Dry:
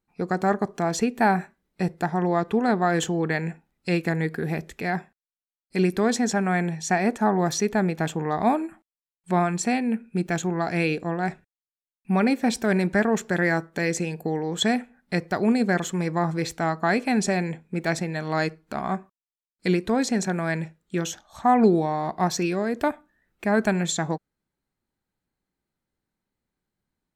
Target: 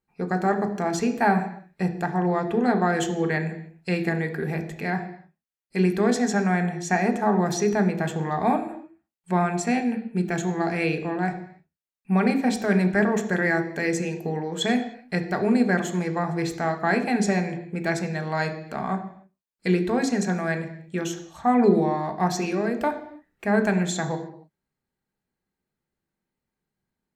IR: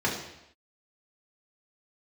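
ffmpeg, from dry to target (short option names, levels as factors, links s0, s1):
-filter_complex "[0:a]asplit=2[s0][s1];[1:a]atrim=start_sample=2205,afade=t=out:st=0.37:d=0.01,atrim=end_sample=16758[s2];[s1][s2]afir=irnorm=-1:irlink=0,volume=0.237[s3];[s0][s3]amix=inputs=2:normalize=0,volume=0.596"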